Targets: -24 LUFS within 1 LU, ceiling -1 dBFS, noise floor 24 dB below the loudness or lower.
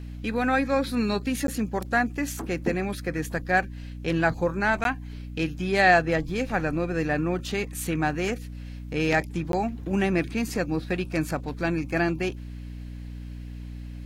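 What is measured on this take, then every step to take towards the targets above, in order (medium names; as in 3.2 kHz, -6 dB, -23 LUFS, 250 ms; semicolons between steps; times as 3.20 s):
dropouts 3; longest dropout 12 ms; hum 60 Hz; highest harmonic 300 Hz; hum level -35 dBFS; loudness -26.5 LUFS; peak level -8.0 dBFS; loudness target -24.0 LUFS
-> interpolate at 1.47/4.84/9.52 s, 12 ms; hum notches 60/120/180/240/300 Hz; trim +2.5 dB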